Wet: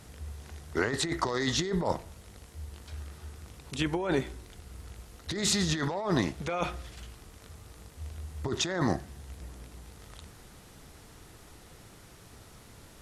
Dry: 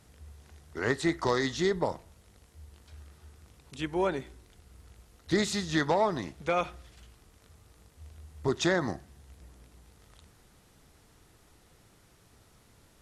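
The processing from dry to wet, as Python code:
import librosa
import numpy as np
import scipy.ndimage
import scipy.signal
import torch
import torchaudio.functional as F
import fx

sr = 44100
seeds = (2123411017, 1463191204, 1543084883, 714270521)

y = fx.over_compress(x, sr, threshold_db=-33.0, ratio=-1.0)
y = y * 10.0 ** (4.0 / 20.0)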